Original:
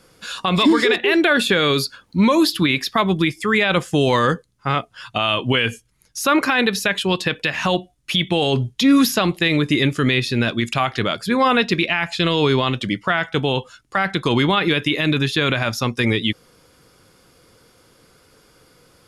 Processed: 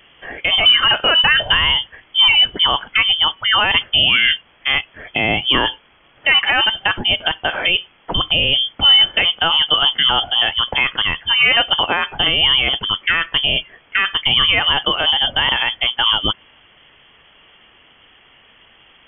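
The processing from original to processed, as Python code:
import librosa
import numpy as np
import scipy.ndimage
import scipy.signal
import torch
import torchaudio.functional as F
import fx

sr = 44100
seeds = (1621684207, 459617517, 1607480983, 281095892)

y = fx.dmg_noise_colour(x, sr, seeds[0], colour='white', level_db=-48.0)
y = fx.freq_invert(y, sr, carrier_hz=3300)
y = F.gain(torch.from_numpy(y), 2.5).numpy()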